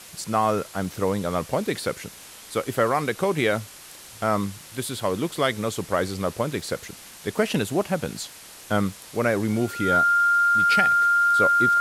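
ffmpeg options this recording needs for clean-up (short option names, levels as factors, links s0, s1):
-af "adeclick=t=4,bandreject=f=1400:w=30,afwtdn=0.0079"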